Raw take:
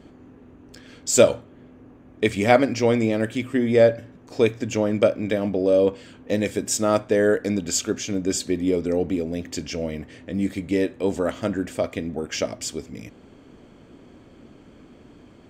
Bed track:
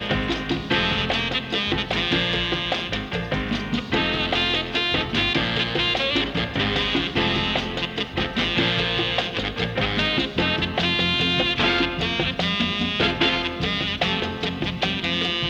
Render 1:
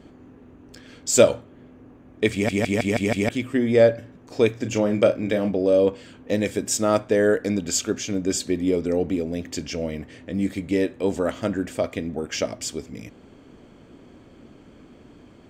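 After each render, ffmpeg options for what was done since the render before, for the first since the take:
-filter_complex "[0:a]asettb=1/sr,asplit=3[s0][s1][s2];[s0]atrim=end=4.564[s3];[s1]atrim=start=4.56:end=5.51,asetpts=PTS-STARTPTS,afade=t=in:d=0.004:c=qsin,afade=t=out:st=0.946:d=0.004:c=qsin,asplit=2[s4][s5];[s5]adelay=34,volume=0.355[s6];[s4][s6]amix=inputs=2:normalize=0,atrim=end_sample=41895[s7];[s2]atrim=start=5.506[s8];[s3][s7]acrossfade=d=0.004:c1=hsin:c2=qsin[s9];[s9][s8]acrossfade=d=0.004:c1=qsin:c2=hsin,asplit=7[s10][s11][s12][s13][s14][s15][s16];[s10]atrim=end=2.492[s17];[s11]atrim=start=2.328:end=2.492[s18];[s12]atrim=start=2.328:end=2.492[s19];[s13]atrim=start=2.328:end=2.492[s20];[s14]atrim=start=2.328:end=2.492[s21];[s15]atrim=start=2.328:end=2.492[s22];[s16]atrim=start=3.288[s23];[s17][s18]acrossfade=d=0.004:c1=hsin:c2=hsin[s24];[s24][s19]acrossfade=d=0.004:c1=hsin:c2=hsin[s25];[s25][s20]acrossfade=d=0.004:c1=hsin:c2=hsin[s26];[s26][s21]acrossfade=d=0.004:c1=hsin:c2=hsin[s27];[s27][s22]acrossfade=d=0.004:c1=hsin:c2=hsin[s28];[s28][s23]acrossfade=d=0.004:c1=hsin:c2=hsin"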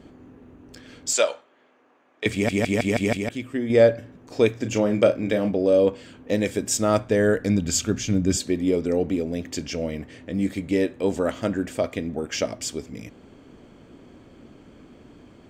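-filter_complex "[0:a]asettb=1/sr,asplit=3[s0][s1][s2];[s0]atrim=end=1.134[s3];[s1]atrim=start=1.13:end=2.26,asetpts=PTS-STARTPTS,afade=t=in:d=0.004:c=qsin,afade=t=out:st=1.126:d=0.004:c=qsin,highpass=770,lowpass=6900[s4];[s2]atrim=start=2.256[s5];[s3][s4]acrossfade=d=0.004:c1=hsin:c2=qsin[s6];[s6][s5]acrossfade=d=0.004:c1=qsin:c2=hsin,asettb=1/sr,asplit=3[s7][s8][s9];[s7]atrim=end=6.514[s10];[s8]atrim=start=6.51:end=8.37,asetpts=PTS-STARTPTS,afade=t=in:d=0.004:c=qsin,afade=t=out:st=1.856:d=0.004:c=qsin,asubboost=boost=7.5:cutoff=200[s11];[s9]atrim=start=8.366[s12];[s10][s11]acrossfade=d=0.004:c1=hsin:c2=qsin[s13];[s13][s12]acrossfade=d=0.004:c1=qsin:c2=hsin,asplit=3[s14][s15][s16];[s14]atrim=end=3.172[s17];[s15]atrim=start=3.168:end=3.702,asetpts=PTS-STARTPTS,volume=0.562[s18];[s16]atrim=start=3.698[s19];[s17][s18]acrossfade=d=0.004:c1=hsin:c2=hsin[s20];[s20][s19]acrossfade=d=0.004:c1=hsin:c2=hsin"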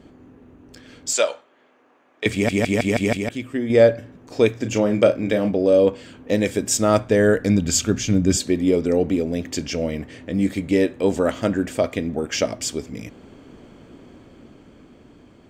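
-af "dynaudnorm=f=230:g=13:m=1.58"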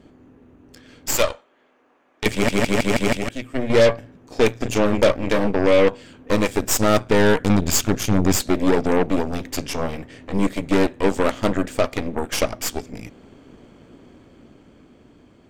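-af "asoftclip=type=tanh:threshold=0.501,aeval=exprs='0.473*(cos(1*acos(clip(val(0)/0.473,-1,1)))-cos(1*PI/2))+0.015*(cos(7*acos(clip(val(0)/0.473,-1,1)))-cos(7*PI/2))+0.0841*(cos(8*acos(clip(val(0)/0.473,-1,1)))-cos(8*PI/2))':c=same"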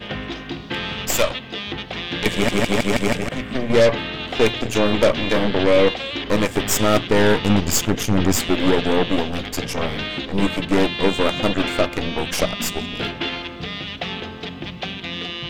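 -filter_complex "[1:a]volume=0.531[s0];[0:a][s0]amix=inputs=2:normalize=0"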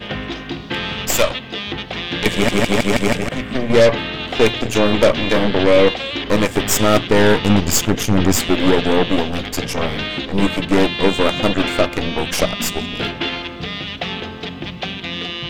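-af "volume=1.41"

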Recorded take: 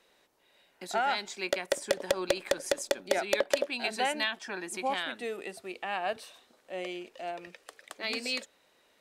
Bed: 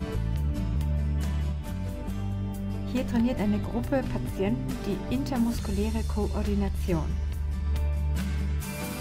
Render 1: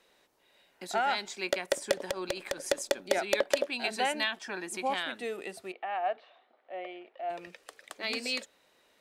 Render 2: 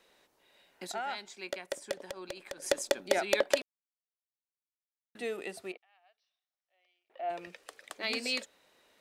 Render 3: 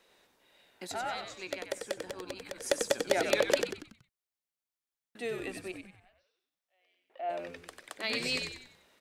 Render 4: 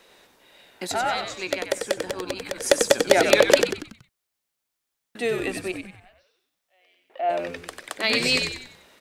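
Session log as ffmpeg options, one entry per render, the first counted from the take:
-filter_complex "[0:a]asettb=1/sr,asplit=3[s0][s1][s2];[s0]atrim=end=2.024[s3];[s1]atrim=start=2.02:end=2.66,asetpts=PTS-STARTPTS,afade=t=in:d=0.004:c=qsin,afade=t=out:st=0.636:d=0.004:c=qsin,acompressor=threshold=0.0251:ratio=2:attack=3.2:release=140:knee=1:detection=peak[s4];[s2]atrim=start=2.656[s5];[s3][s4]acrossfade=d=0.004:c1=hsin:c2=qsin[s6];[s6][s5]acrossfade=d=0.004:c1=qsin:c2=hsin,asplit=3[s7][s8][s9];[s7]afade=t=out:st=5.71:d=0.02[s10];[s8]highpass=460,equalizer=f=480:t=q:w=4:g=-4,equalizer=f=720:t=q:w=4:g=6,equalizer=f=1000:t=q:w=4:g=-5,equalizer=f=1600:t=q:w=4:g=-5,equalizer=f=2600:t=q:w=4:g=-6,lowpass=f=2700:w=0.5412,lowpass=f=2700:w=1.3066,afade=t=in:st=5.71:d=0.02,afade=t=out:st=7.29:d=0.02[s11];[s9]afade=t=in:st=7.29:d=0.02[s12];[s10][s11][s12]amix=inputs=3:normalize=0"
-filter_complex "[0:a]asettb=1/sr,asplit=3[s0][s1][s2];[s0]atrim=end=5.774[s3];[s1]atrim=start=5.77:end=7.1,asetpts=PTS-STARTPTS,afade=t=in:d=0.004:c=qsin,afade=t=out:st=1.326:d=0.004:c=qsin,bandpass=f=5600:t=q:w=9.3[s4];[s2]atrim=start=7.096[s5];[s3][s4]acrossfade=d=0.004:c1=hsin:c2=qsin[s6];[s6][s5]acrossfade=d=0.004:c1=qsin:c2=hsin,asplit=5[s7][s8][s9][s10][s11];[s7]atrim=end=0.922[s12];[s8]atrim=start=0.918:end=2.622,asetpts=PTS-STARTPTS,volume=0.398[s13];[s9]atrim=start=2.618:end=3.62,asetpts=PTS-STARTPTS,afade=t=out:st=0.998:d=0.004:c=hsin[s14];[s10]atrim=start=3.62:end=5.15,asetpts=PTS-STARTPTS,volume=0[s15];[s11]atrim=start=5.15,asetpts=PTS-STARTPTS,afade=t=in:d=0.004:c=hsin[s16];[s12][s13]acrossfade=d=0.004:c1=hsin:c2=hsin[s17];[s14][s15][s16]concat=n=3:v=0:a=1[s18];[s17][s18]acrossfade=d=0.004:c1=hsin:c2=hsin"
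-filter_complex "[0:a]asplit=6[s0][s1][s2][s3][s4][s5];[s1]adelay=94,afreqshift=-88,volume=0.501[s6];[s2]adelay=188,afreqshift=-176,volume=0.2[s7];[s3]adelay=282,afreqshift=-264,volume=0.0804[s8];[s4]adelay=376,afreqshift=-352,volume=0.032[s9];[s5]adelay=470,afreqshift=-440,volume=0.0129[s10];[s0][s6][s7][s8][s9][s10]amix=inputs=6:normalize=0"
-af "volume=3.55"

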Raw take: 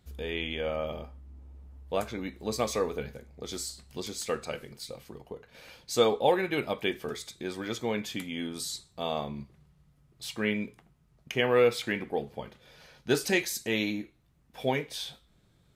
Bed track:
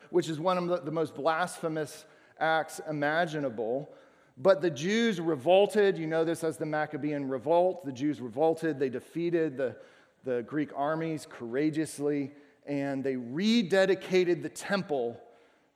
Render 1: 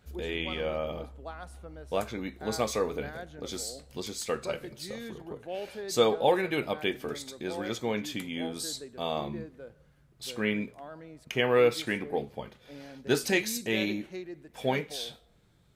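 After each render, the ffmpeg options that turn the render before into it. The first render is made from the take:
-filter_complex "[1:a]volume=0.178[s0];[0:a][s0]amix=inputs=2:normalize=0"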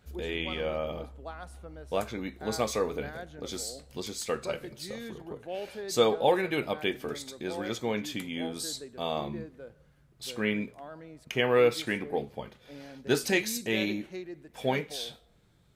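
-af anull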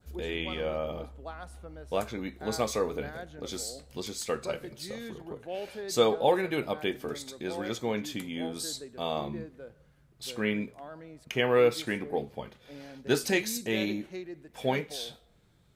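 -af "adynamicequalizer=threshold=0.00562:dfrequency=2500:dqfactor=1.2:tfrequency=2500:tqfactor=1.2:attack=5:release=100:ratio=0.375:range=2:mode=cutabove:tftype=bell"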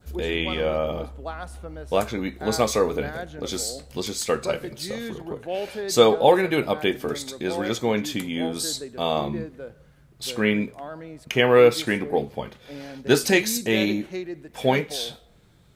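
-af "volume=2.51"

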